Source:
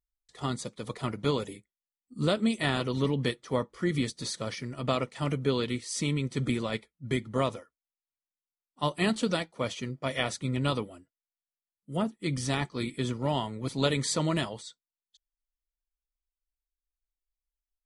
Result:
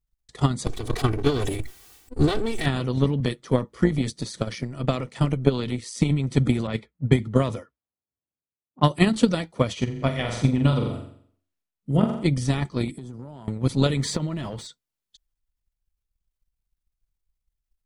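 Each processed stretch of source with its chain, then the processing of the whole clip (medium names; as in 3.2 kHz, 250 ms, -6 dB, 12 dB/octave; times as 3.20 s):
0.66–2.66 s: comb filter that takes the minimum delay 2.6 ms + decay stretcher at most 38 dB/s
3.20–6.11 s: high-pass 85 Hz + AM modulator 120 Hz, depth 25%
6.67–8.99 s: high-pass 65 Hz 24 dB/octave + level-controlled noise filter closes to 670 Hz, open at -27.5 dBFS
9.73–12.25 s: treble shelf 6 kHz -7.5 dB + flutter echo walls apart 7.4 m, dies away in 0.57 s
12.91–13.48 s: high-pass 130 Hz 6 dB/octave + peaking EQ 2.5 kHz -13.5 dB 1.4 oct + compression 12:1, threshold -38 dBFS
14.01–14.67 s: companding laws mixed up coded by mu + treble shelf 5.6 kHz -9 dB + compression 10:1, threshold -29 dBFS
whole clip: bass shelf 240 Hz +11 dB; transient shaper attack +12 dB, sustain +8 dB; trim -3 dB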